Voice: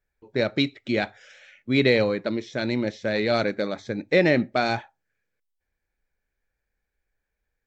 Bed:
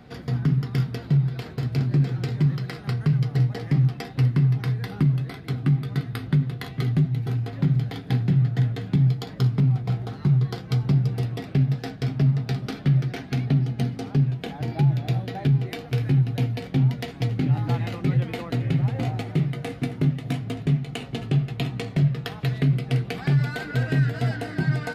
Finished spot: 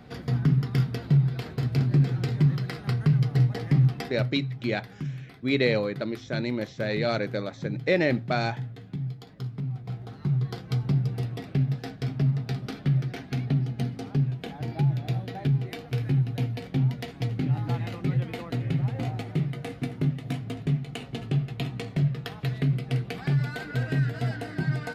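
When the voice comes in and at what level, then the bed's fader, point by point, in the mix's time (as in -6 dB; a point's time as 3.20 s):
3.75 s, -4.0 dB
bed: 4.07 s -0.5 dB
4.32 s -13 dB
9.52 s -13 dB
10.54 s -4 dB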